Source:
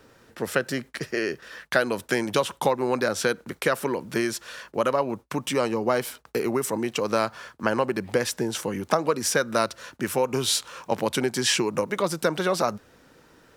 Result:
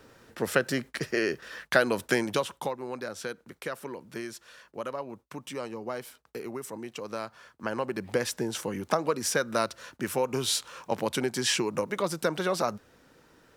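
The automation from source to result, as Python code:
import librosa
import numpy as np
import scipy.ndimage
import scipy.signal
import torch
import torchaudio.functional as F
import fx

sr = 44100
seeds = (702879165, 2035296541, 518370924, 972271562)

y = fx.gain(x, sr, db=fx.line((2.12, -0.5), (2.82, -12.0), (7.32, -12.0), (8.13, -4.0)))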